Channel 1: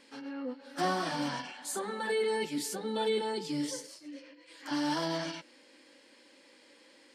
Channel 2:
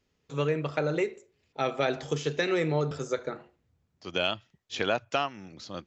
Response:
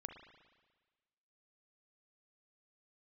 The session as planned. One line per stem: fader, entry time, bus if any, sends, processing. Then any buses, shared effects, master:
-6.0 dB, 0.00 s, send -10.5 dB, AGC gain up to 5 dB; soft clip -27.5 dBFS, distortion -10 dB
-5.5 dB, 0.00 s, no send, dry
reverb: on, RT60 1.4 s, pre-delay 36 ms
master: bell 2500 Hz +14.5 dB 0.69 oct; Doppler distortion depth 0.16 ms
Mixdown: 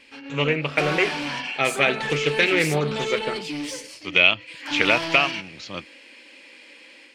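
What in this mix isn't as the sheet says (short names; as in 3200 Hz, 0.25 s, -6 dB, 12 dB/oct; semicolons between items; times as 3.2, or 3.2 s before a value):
stem 1 -6.0 dB -> 0.0 dB; stem 2 -5.5 dB -> +3.5 dB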